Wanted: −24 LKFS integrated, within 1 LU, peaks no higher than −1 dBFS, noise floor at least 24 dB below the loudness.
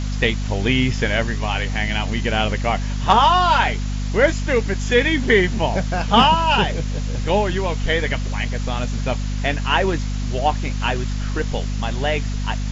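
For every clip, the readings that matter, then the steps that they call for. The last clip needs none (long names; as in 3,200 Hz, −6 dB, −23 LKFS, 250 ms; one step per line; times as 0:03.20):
mains hum 50 Hz; hum harmonics up to 250 Hz; level of the hum −21 dBFS; background noise floor −23 dBFS; target noise floor −44 dBFS; integrated loudness −20.0 LKFS; sample peak −1.5 dBFS; target loudness −24.0 LKFS
→ mains-hum notches 50/100/150/200/250 Hz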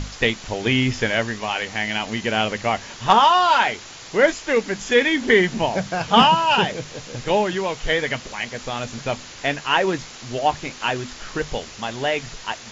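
mains hum none found; background noise floor −39 dBFS; target noise floor −45 dBFS
→ noise reduction from a noise print 6 dB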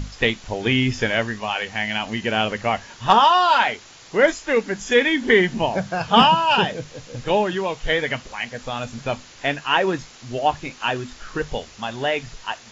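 background noise floor −45 dBFS; integrated loudness −20.5 LKFS; sample peak −2.0 dBFS; target loudness −24.0 LKFS
→ level −3.5 dB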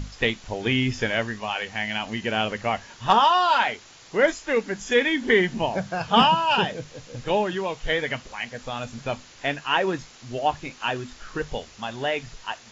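integrated loudness −24.0 LKFS; sample peak −5.5 dBFS; background noise floor −49 dBFS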